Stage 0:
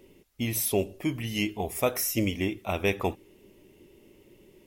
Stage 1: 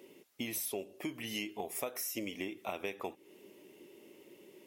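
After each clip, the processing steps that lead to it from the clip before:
high-pass filter 270 Hz 12 dB per octave
downward compressor 6 to 1, threshold −37 dBFS, peak gain reduction 16 dB
level +1 dB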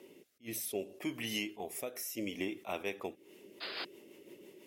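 sound drawn into the spectrogram noise, 0:03.60–0:03.85, 360–5,100 Hz −42 dBFS
rotating-speaker cabinet horn 0.65 Hz, later 6 Hz, at 0:02.89
level that may rise only so fast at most 320 dB per second
level +3.5 dB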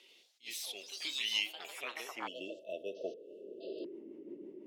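band-pass filter sweep 3,700 Hz → 290 Hz, 0:01.38–0:04.04
delay with pitch and tempo change per echo 86 ms, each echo +4 semitones, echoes 3, each echo −6 dB
time-frequency box erased 0:02.27–0:03.85, 680–2,600 Hz
level +10 dB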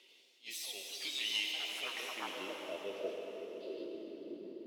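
on a send at −1.5 dB: convolution reverb RT60 4.2 s, pre-delay 71 ms
on the sum: soft clipping −23.5 dBFS, distortion −23 dB
level −1.5 dB

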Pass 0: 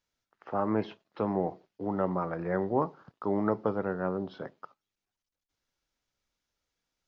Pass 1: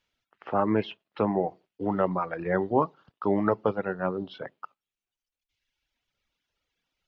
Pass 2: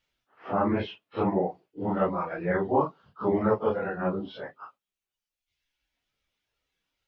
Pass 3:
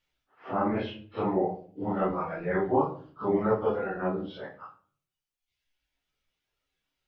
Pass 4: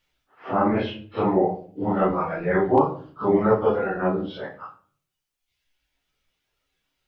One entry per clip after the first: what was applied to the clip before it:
high-shelf EQ 4,200 Hz −9.5 dB; reverb reduction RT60 1.5 s; parametric band 2,900 Hz +9.5 dB 1.1 octaves; level +5 dB
random phases in long frames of 100 ms
rectangular room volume 46 cubic metres, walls mixed, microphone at 0.38 metres; level −3 dB
hard clipping −12.5 dBFS, distortion −45 dB; level +6.5 dB

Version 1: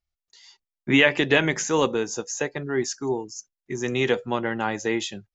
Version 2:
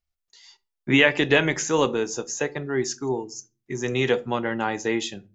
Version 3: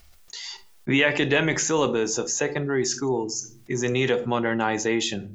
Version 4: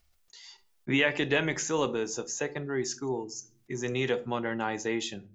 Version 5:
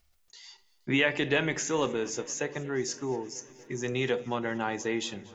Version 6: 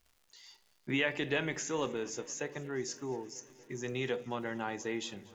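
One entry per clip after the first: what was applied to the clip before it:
rectangular room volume 150 cubic metres, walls furnished, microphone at 0.32 metres
envelope flattener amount 50%; level −3.5 dB
expander for the loud parts 1.5 to 1, over −40 dBFS; level −4.5 dB
feedback echo with a swinging delay time 236 ms, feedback 80%, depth 54 cents, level −23 dB
surface crackle 250 per second −49 dBFS; level −6 dB

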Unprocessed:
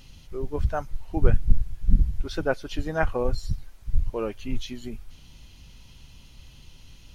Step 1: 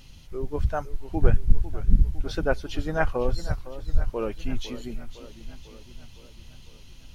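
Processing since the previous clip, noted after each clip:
feedback echo with a swinging delay time 504 ms, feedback 59%, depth 149 cents, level −14 dB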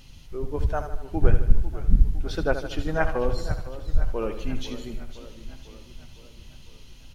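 repeating echo 77 ms, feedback 55%, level −10 dB

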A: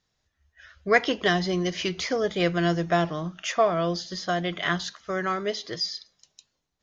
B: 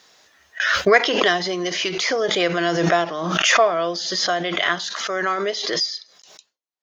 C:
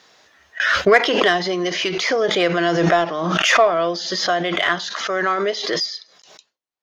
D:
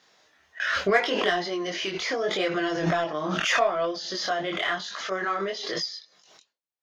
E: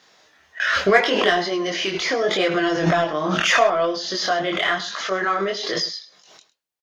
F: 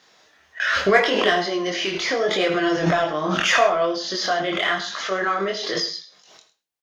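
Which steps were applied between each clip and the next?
high-pass filter 390 Hz 12 dB per octave; noise gate with hold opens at −44 dBFS; background raised ahead of every attack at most 32 dB per second; level +5 dB
high-shelf EQ 5,900 Hz −10 dB; in parallel at −6.5 dB: soft clipping −16.5 dBFS, distortion −10 dB
multi-voice chorus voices 2, 0.78 Hz, delay 23 ms, depth 3.4 ms; level −5 dB
single-tap delay 105 ms −15.5 dB; level +6 dB
convolution reverb, pre-delay 35 ms, DRR 10 dB; level −1 dB

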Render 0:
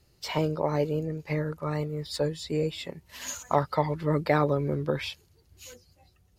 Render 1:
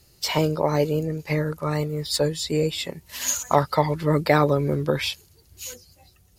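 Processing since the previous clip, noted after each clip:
high-shelf EQ 4,700 Hz +10.5 dB
level +5 dB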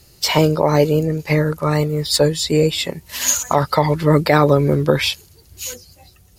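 boost into a limiter +8.5 dB
level −1 dB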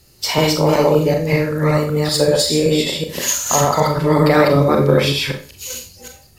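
delay that plays each chunk backwards 190 ms, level 0 dB
four-comb reverb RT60 0.38 s, combs from 29 ms, DRR 3.5 dB
level −3 dB

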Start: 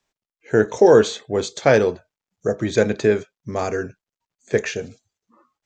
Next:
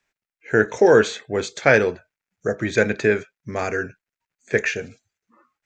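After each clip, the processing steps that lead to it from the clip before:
flat-topped bell 1,900 Hz +8 dB 1.1 octaves
level −2 dB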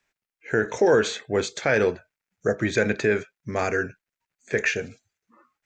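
brickwall limiter −10 dBFS, peak gain reduction 8.5 dB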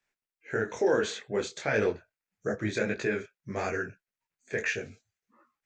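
micro pitch shift up and down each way 58 cents
level −3 dB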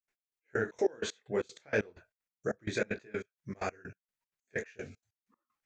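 gate pattern ".x..x..xx" 191 BPM −24 dB
level −2 dB

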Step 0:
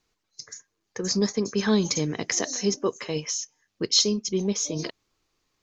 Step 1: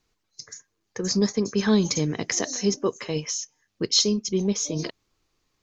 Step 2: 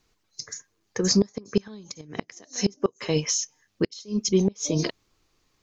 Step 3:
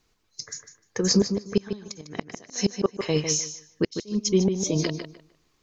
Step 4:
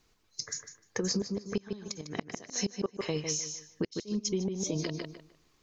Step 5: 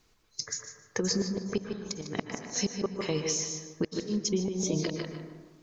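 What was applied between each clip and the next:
low-shelf EQ 210 Hz +4.5 dB
gate with flip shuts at −14 dBFS, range −27 dB; level +4 dB
feedback echo with a low-pass in the loop 151 ms, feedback 21%, low-pass 4,500 Hz, level −7.5 dB
downward compressor 4 to 1, threshold −30 dBFS, peak gain reduction 13 dB
convolution reverb RT60 1.4 s, pre-delay 107 ms, DRR 7.5 dB; level +2 dB

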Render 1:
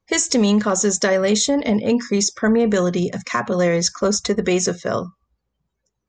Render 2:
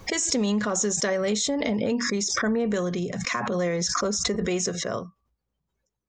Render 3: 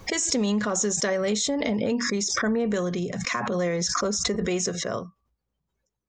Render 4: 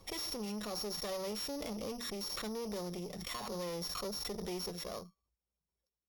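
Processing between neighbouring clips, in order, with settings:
background raised ahead of every attack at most 23 dB per second; level −8.5 dB
no processing that can be heard
samples sorted by size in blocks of 8 samples; tube saturation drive 26 dB, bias 0.65; thirty-one-band graphic EQ 125 Hz −11 dB, 250 Hz −7 dB, 1,600 Hz −9 dB; level −8 dB

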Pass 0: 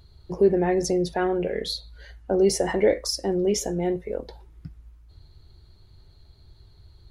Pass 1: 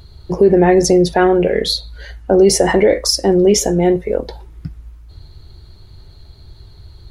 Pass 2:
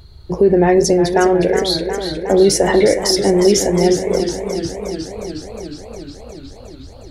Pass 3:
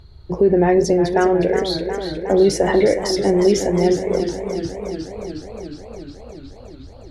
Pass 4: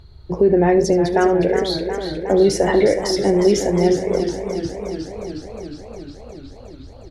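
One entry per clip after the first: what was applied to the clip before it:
boost into a limiter +13 dB; level −1 dB
feedback echo with a swinging delay time 361 ms, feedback 73%, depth 72 cents, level −9 dB; level −1.5 dB
low-pass filter 3,200 Hz 6 dB per octave; level −2.5 dB
single-tap delay 74 ms −16 dB

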